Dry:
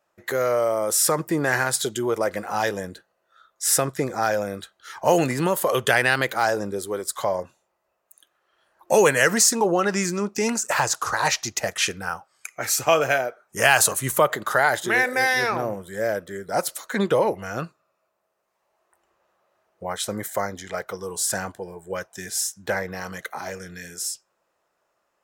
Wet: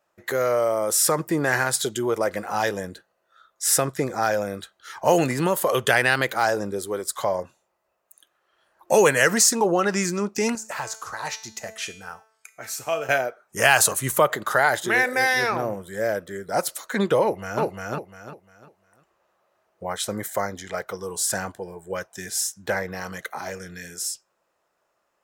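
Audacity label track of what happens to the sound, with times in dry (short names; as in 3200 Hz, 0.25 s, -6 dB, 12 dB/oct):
10.550000	13.090000	resonator 220 Hz, decay 0.6 s, mix 70%
17.220000	17.630000	echo throw 0.35 s, feedback 30%, level -1 dB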